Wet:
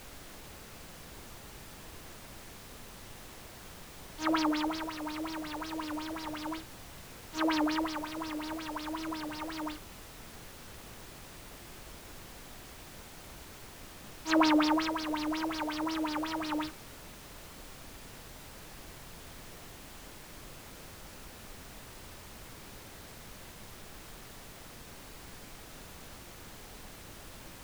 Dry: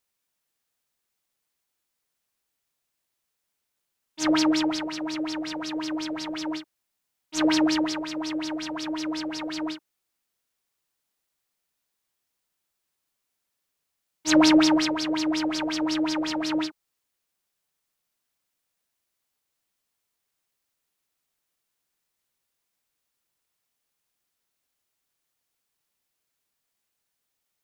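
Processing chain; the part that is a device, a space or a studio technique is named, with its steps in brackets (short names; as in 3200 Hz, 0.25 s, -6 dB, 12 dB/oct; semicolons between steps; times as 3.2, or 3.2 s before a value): horn gramophone (BPF 250–4400 Hz; bell 1100 Hz +8 dB; wow and flutter; pink noise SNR 10 dB); gain -7.5 dB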